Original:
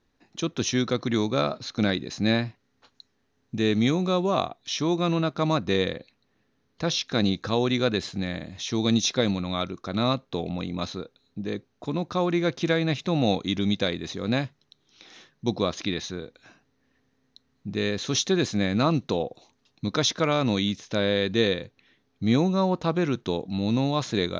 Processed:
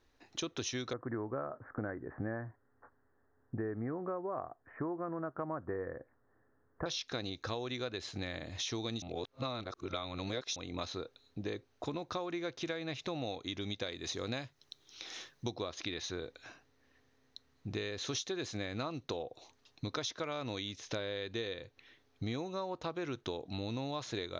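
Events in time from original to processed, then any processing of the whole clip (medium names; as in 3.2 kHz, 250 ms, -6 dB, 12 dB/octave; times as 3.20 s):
0.93–6.86 s: steep low-pass 1.8 kHz 72 dB/octave
9.02–10.56 s: reverse
13.88–15.54 s: treble shelf 5.6 kHz +9.5 dB
whole clip: peaking EQ 190 Hz -13 dB 0.73 oct; compression 10:1, threshold -36 dBFS; trim +1 dB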